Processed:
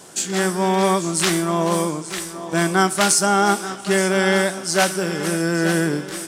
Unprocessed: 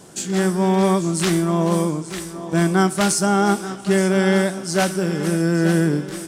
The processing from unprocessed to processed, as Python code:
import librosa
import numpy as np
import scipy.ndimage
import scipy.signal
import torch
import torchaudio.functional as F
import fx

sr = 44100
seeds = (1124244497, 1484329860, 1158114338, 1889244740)

y = fx.low_shelf(x, sr, hz=360.0, db=-11.5)
y = F.gain(torch.from_numpy(y), 4.5).numpy()